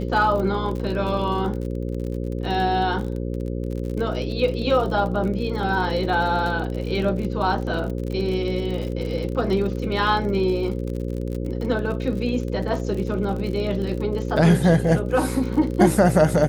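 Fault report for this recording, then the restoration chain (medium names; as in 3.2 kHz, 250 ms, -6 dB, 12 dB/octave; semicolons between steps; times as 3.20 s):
buzz 60 Hz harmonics 9 -27 dBFS
crackle 48 per s -29 dBFS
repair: de-click; de-hum 60 Hz, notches 9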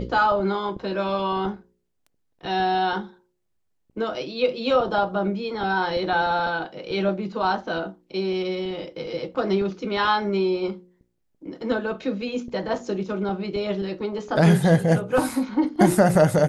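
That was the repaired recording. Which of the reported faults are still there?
nothing left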